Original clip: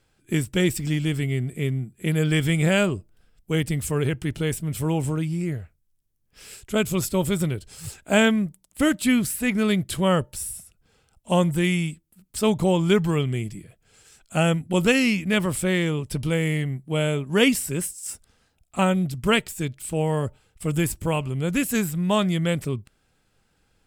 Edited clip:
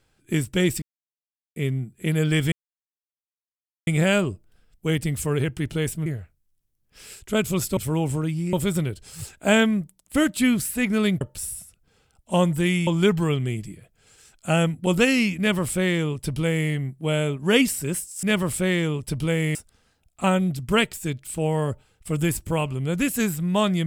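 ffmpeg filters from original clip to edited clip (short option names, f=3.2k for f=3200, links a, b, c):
-filter_complex "[0:a]asplit=11[a][b][c][d][e][f][g][h][i][j][k];[a]atrim=end=0.82,asetpts=PTS-STARTPTS,afade=t=out:st=0.816:d=0.004:c=hsin[l];[b]atrim=start=0.82:end=1.56,asetpts=PTS-STARTPTS,volume=0[m];[c]atrim=start=1.56:end=2.52,asetpts=PTS-STARTPTS,afade=t=in:d=0.004:c=hsin,afade=t=out:st=0.956:d=0.004:c=hsin,apad=pad_dur=1.35[n];[d]atrim=start=2.52:end=4.712,asetpts=PTS-STARTPTS,afade=t=in:d=0.004:c=hsin[o];[e]atrim=start=5.468:end=7.182[p];[f]atrim=start=4.708:end=5.472[q];[g]atrim=start=7.178:end=9.862[r];[h]atrim=start=10.188:end=11.852[s];[i]atrim=start=12.738:end=18.102[t];[j]atrim=start=15.258:end=16.582[u];[k]atrim=start=18.098[v];[l][m][n][o]concat=n=4:v=0:a=1[w];[w][p]acrossfade=d=0.004:c1=hsin:c2=hsin[x];[x][q]acrossfade=d=0.004:c1=hsin:c2=hsin[y];[y][r]acrossfade=d=0.004:c1=hsin:c2=hsin[z];[z][s]acrossfade=d=0.004:c1=hsin:c2=hsin[aa];[aa][t]acrossfade=d=0.004:c1=hsin:c2=hsin[ab];[ab][u]acrossfade=d=0.004:c1=hsin:c2=hsin[ac];[ac][v]acrossfade=d=0.004:c1=hsin:c2=hsin"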